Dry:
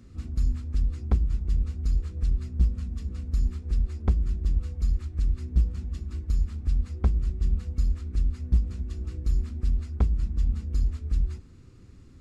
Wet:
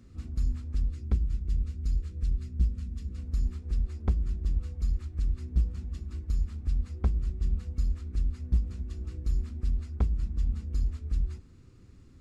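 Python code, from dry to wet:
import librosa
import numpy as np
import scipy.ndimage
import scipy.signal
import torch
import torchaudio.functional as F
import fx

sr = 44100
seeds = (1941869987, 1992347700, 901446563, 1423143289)

y = fx.peak_eq(x, sr, hz=820.0, db=-8.5, octaves=1.3, at=(0.9, 3.18))
y = F.gain(torch.from_numpy(y), -3.5).numpy()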